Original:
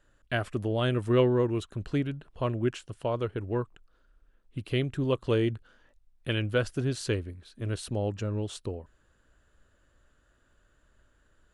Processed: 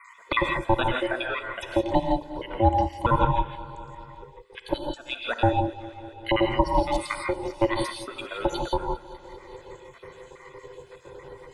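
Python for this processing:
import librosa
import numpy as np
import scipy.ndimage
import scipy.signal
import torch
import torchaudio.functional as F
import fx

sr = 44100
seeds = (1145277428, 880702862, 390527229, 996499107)

p1 = fx.spec_dropout(x, sr, seeds[0], share_pct=76)
p2 = scipy.signal.sosfilt(scipy.signal.butter(2, 45.0, 'highpass', fs=sr, output='sos'), p1)
p3 = fx.high_shelf(p2, sr, hz=7100.0, db=-11.5)
p4 = p3 + 0.75 * np.pad(p3, (int(2.0 * sr / 1000.0), 0))[:len(p3)]
p5 = fx.rider(p4, sr, range_db=4, speed_s=0.5)
p6 = p4 + (p5 * 10.0 ** (1.5 / 20.0))
p7 = p6 * np.sin(2.0 * np.pi * 450.0 * np.arange(len(p6)) / sr)
p8 = p7 + fx.echo_feedback(p7, sr, ms=198, feedback_pct=59, wet_db=-19.0, dry=0)
p9 = fx.rev_gated(p8, sr, seeds[1], gate_ms=190, shape='rising', drr_db=2.0)
p10 = fx.band_squash(p9, sr, depth_pct=40)
y = p10 * 10.0 ** (6.0 / 20.0)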